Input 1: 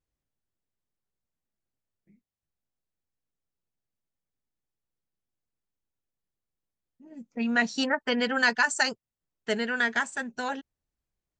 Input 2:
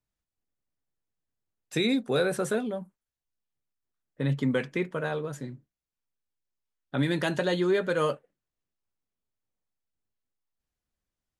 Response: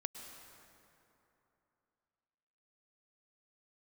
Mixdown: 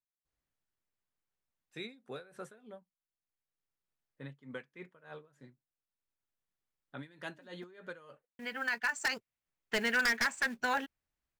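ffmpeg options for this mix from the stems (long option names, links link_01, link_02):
-filter_complex "[0:a]adynamicequalizer=threshold=0.00794:dfrequency=2300:dqfactor=2.9:tfrequency=2300:tqfactor=2.9:attack=5:release=100:ratio=0.375:range=3.5:mode=boostabove:tftype=bell,acompressor=threshold=-25dB:ratio=4,acrusher=bits=5:mode=log:mix=0:aa=0.000001,adelay=250,volume=-4.5dB,asplit=3[link_01][link_02][link_03];[link_01]atrim=end=7.64,asetpts=PTS-STARTPTS,afade=type=out:start_time=7.636:duration=0.004:curve=hsin[link_04];[link_02]atrim=start=7.64:end=8.39,asetpts=PTS-STARTPTS,volume=0[link_05];[link_03]atrim=start=8.39,asetpts=PTS-STARTPTS,afade=type=in:duration=0.004:curve=hsin[link_06];[link_04][link_05][link_06]concat=n=3:v=0:a=1[link_07];[1:a]aeval=exprs='val(0)*pow(10,-19*(0.5-0.5*cos(2*PI*3.3*n/s))/20)':channel_layout=same,volume=-17.5dB,asplit=2[link_08][link_09];[link_09]apad=whole_len=513710[link_10];[link_07][link_10]sidechaincompress=threshold=-57dB:ratio=16:attack=6.3:release=1290[link_11];[link_11][link_08]amix=inputs=2:normalize=0,equalizer=frequency=1600:width=0.55:gain=7,aeval=exprs='0.0708*(abs(mod(val(0)/0.0708+3,4)-2)-1)':channel_layout=same"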